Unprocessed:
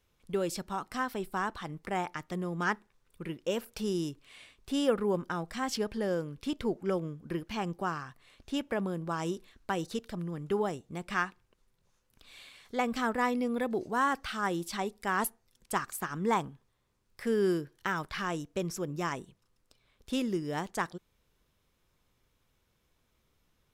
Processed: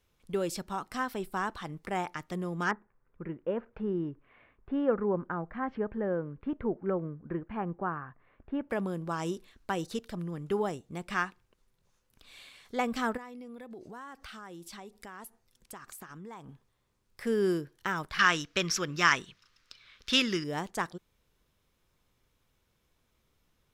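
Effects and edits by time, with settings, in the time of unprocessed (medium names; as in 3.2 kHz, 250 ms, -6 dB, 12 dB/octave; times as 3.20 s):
2.71–8.70 s: low-pass 1.8 kHz 24 dB/octave
13.17–16.49 s: compression, threshold -43 dBFS
18.19–20.44 s: high-order bell 2.7 kHz +15.5 dB 2.7 oct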